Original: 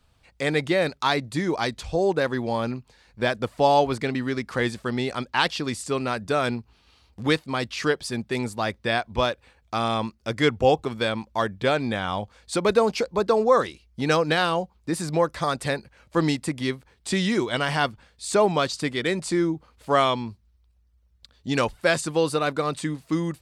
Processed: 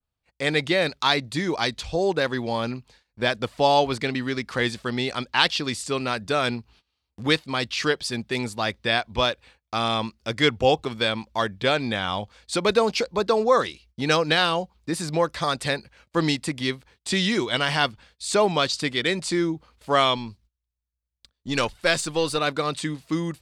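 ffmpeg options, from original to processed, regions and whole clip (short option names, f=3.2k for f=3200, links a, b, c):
-filter_complex "[0:a]asettb=1/sr,asplit=3[a][b][c];[a]atrim=end=20.174[d];[b]atrim=start=20.17:end=22.38,asetpts=PTS-STARTPTS,afade=t=in:d=0.004:c=qsin,afade=t=out:st=2.206:d=0.004:c=qsin,aeval=exprs='if(lt(val(0),0),0.708*val(0),val(0))':c=same,equalizer=f=8.3k:t=o:w=1.5:g=2[e];[c]atrim=start=22.376[f];[d][e]acrossfade=d=0.004:c1=hsin:c2=qsin[g];[g][f]acrossfade=d=0.004:c1=qsin:c2=hsin,agate=range=-21dB:threshold=-53dB:ratio=16:detection=peak,adynamicequalizer=threshold=0.00891:dfrequency=3700:dqfactor=0.71:tfrequency=3700:tqfactor=0.71:attack=5:release=100:ratio=0.375:range=3.5:mode=boostabove:tftype=bell,volume=-1dB"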